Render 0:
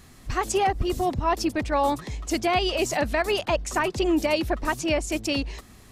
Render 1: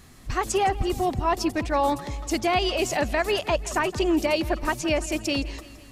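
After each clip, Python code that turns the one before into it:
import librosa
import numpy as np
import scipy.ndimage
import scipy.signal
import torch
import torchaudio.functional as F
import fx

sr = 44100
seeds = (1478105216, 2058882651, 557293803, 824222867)

y = fx.echo_feedback(x, sr, ms=167, feedback_pct=59, wet_db=-18)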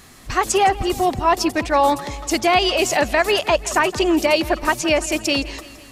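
y = fx.low_shelf(x, sr, hz=250.0, db=-9.0)
y = F.gain(torch.from_numpy(y), 8.0).numpy()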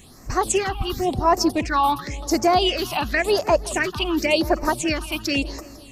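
y = fx.phaser_stages(x, sr, stages=6, low_hz=490.0, high_hz=3300.0, hz=0.93, feedback_pct=25)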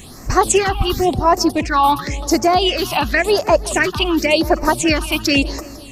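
y = fx.rider(x, sr, range_db=10, speed_s=0.5)
y = F.gain(torch.from_numpy(y), 5.5).numpy()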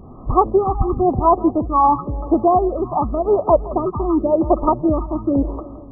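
y = fx.brickwall_lowpass(x, sr, high_hz=1300.0)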